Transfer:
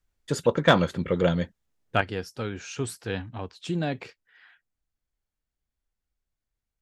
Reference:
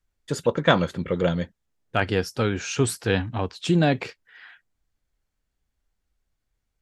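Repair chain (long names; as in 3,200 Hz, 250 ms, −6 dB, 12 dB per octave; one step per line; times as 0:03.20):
clipped peaks rebuilt −6 dBFS
level 0 dB, from 0:02.01 +8.5 dB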